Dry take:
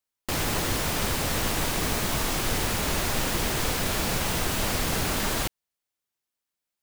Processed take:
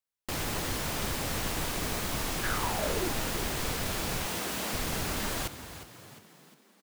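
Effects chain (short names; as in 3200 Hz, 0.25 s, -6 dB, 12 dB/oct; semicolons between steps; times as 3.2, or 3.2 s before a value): 2.42–3.12 bell 1800 Hz -> 290 Hz +14 dB 0.4 oct; 4.26–4.73 steep high-pass 180 Hz; frequency-shifting echo 0.355 s, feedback 49%, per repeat +46 Hz, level -12.5 dB; gain -6 dB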